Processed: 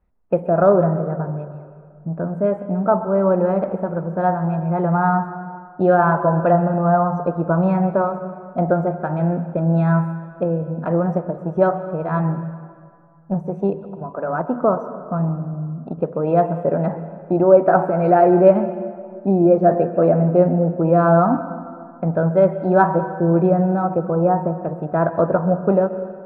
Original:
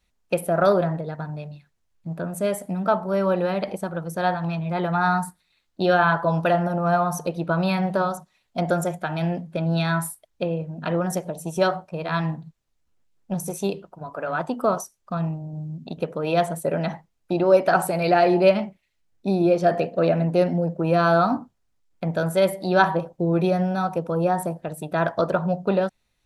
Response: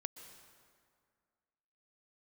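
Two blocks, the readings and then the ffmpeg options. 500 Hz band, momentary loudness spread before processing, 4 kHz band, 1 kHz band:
+5.0 dB, 13 LU, under -20 dB, +4.0 dB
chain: -filter_complex "[0:a]lowpass=1.2k,asplit=2[a][b];[1:a]atrim=start_sample=2205,lowpass=2.1k[c];[b][c]afir=irnorm=-1:irlink=0,volume=7.5dB[d];[a][d]amix=inputs=2:normalize=0,volume=-3dB"

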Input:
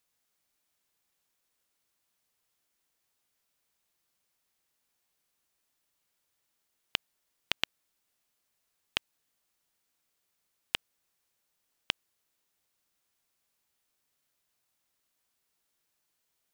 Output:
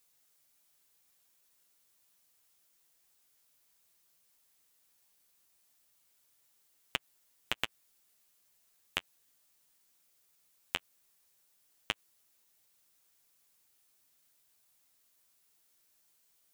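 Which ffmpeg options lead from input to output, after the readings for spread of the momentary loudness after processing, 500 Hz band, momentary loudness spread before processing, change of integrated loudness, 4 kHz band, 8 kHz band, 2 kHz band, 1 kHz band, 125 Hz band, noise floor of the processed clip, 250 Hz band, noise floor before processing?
3 LU, 0.0 dB, 3 LU, -3.0 dB, -4.5 dB, -1.0 dB, -1.5 dB, +0.5 dB, +0.5 dB, -71 dBFS, 0.0 dB, -80 dBFS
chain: -filter_complex "[0:a]acrossover=split=2600[a][b];[b]acompressor=threshold=-39dB:ratio=4:attack=1:release=60[c];[a][c]amix=inputs=2:normalize=0,highshelf=f=5.6k:g=8.5,asplit=2[d][e];[e]aeval=exprs='0.355*sin(PI/2*1.58*val(0)/0.355)':c=same,volume=-12dB[f];[d][f]amix=inputs=2:normalize=0,flanger=delay=6.8:depth=6.1:regen=-20:speed=0.15:shape=triangular,volume=1.5dB"

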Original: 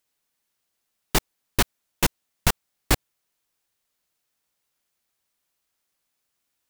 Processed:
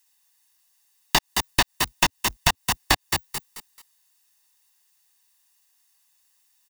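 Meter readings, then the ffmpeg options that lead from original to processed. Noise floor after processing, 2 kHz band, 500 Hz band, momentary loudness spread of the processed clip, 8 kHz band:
-69 dBFS, +5.5 dB, -2.0 dB, 5 LU, +3.0 dB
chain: -filter_complex "[0:a]lowshelf=f=240:g=-8,aecho=1:1:1.1:0.64,asplit=5[a][b][c][d][e];[b]adelay=218,afreqshift=42,volume=-10dB[f];[c]adelay=436,afreqshift=84,volume=-19.6dB[g];[d]adelay=654,afreqshift=126,volume=-29.3dB[h];[e]adelay=872,afreqshift=168,volume=-38.9dB[i];[a][f][g][h][i]amix=inputs=5:normalize=0,acrossover=split=5200[j][k];[k]acompressor=threshold=-36dB:ratio=4:attack=1:release=60[l];[j][l]amix=inputs=2:normalize=0,bass=f=250:g=-5,treble=f=4k:g=6,acrossover=split=660[m][n];[m]aeval=exprs='sgn(val(0))*max(abs(val(0))-0.00126,0)':c=same[o];[o][n]amix=inputs=2:normalize=0,acompressor=threshold=-24dB:ratio=6,asplit=2[p][q];[q]acrusher=bits=5:dc=4:mix=0:aa=0.000001,volume=-7dB[r];[p][r]amix=inputs=2:normalize=0,volume=5dB"

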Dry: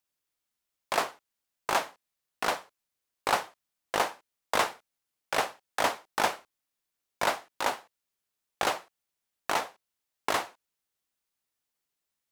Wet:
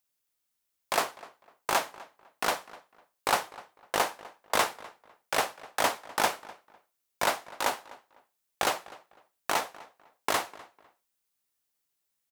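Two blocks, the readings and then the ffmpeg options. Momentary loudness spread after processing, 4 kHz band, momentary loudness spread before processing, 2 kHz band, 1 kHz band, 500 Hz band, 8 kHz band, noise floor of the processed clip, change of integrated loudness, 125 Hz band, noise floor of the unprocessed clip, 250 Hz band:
17 LU, +1.5 dB, 10 LU, +0.5 dB, 0.0 dB, 0.0 dB, +3.5 dB, -81 dBFS, +0.5 dB, 0.0 dB, under -85 dBFS, 0.0 dB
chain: -filter_complex "[0:a]highshelf=f=7.2k:g=6.5,asplit=2[a][b];[b]adelay=251,lowpass=f=2.9k:p=1,volume=-19.5dB,asplit=2[c][d];[d]adelay=251,lowpass=f=2.9k:p=1,volume=0.26[e];[a][c][e]amix=inputs=3:normalize=0"

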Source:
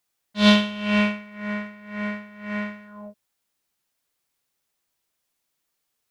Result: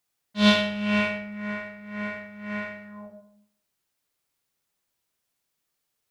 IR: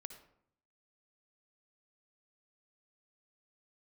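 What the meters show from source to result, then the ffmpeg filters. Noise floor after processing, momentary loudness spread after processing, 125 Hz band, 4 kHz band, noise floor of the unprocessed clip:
-80 dBFS, 19 LU, -3.5 dB, -2.0 dB, -78 dBFS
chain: -filter_complex "[0:a]equalizer=f=120:w=0.89:g=3[a];[1:a]atrim=start_sample=2205[b];[a][b]afir=irnorm=-1:irlink=0,volume=3.5dB"

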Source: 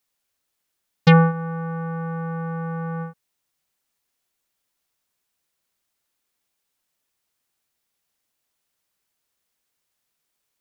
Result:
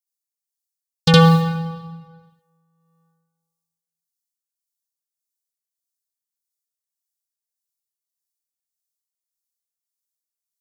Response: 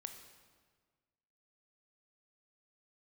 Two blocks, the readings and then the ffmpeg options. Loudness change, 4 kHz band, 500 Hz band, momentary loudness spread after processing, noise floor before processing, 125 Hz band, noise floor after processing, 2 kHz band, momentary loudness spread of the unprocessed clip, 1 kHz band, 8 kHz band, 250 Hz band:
+6.5 dB, +11.5 dB, +3.0 dB, 16 LU, -78 dBFS, +2.5 dB, under -85 dBFS, +0.5 dB, 15 LU, +2.5 dB, n/a, +2.5 dB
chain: -filter_complex "[0:a]agate=range=-41dB:threshold=-22dB:ratio=16:detection=peak,acrossover=split=2600[a][b];[b]acompressor=threshold=-43dB:ratio=4:attack=1:release=60[c];[a][c]amix=inputs=2:normalize=0,aexciter=amount=14.5:drive=9.1:freq=3.5k,tremolo=f=1.7:d=0.49,asplit=2[d][e];[1:a]atrim=start_sample=2205,adelay=65[f];[e][f]afir=irnorm=-1:irlink=0,volume=8dB[g];[d][g]amix=inputs=2:normalize=0,volume=-2dB"

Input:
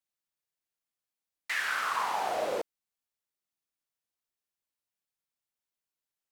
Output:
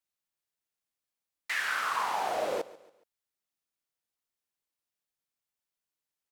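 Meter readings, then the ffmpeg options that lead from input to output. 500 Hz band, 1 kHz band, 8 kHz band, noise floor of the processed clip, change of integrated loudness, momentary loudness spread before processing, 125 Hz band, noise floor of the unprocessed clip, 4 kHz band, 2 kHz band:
0.0 dB, 0.0 dB, 0.0 dB, under -85 dBFS, 0.0 dB, 11 LU, n/a, under -85 dBFS, 0.0 dB, 0.0 dB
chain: -af "aecho=1:1:140|280|420:0.112|0.0449|0.018"

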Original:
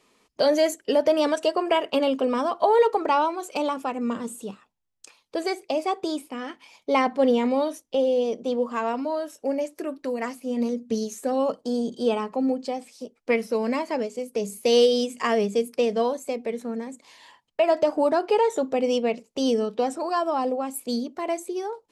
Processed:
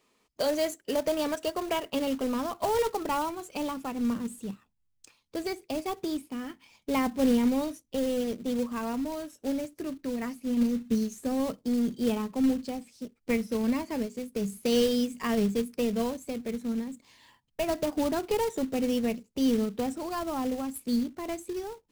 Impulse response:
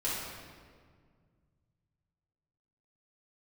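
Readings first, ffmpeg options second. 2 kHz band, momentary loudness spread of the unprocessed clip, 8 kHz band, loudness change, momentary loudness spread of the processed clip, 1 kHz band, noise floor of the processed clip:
-6.5 dB, 11 LU, -2.0 dB, -5.5 dB, 9 LU, -9.0 dB, -73 dBFS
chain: -af "acrusher=bits=3:mode=log:mix=0:aa=0.000001,asubboost=boost=5:cutoff=240,volume=-7dB"

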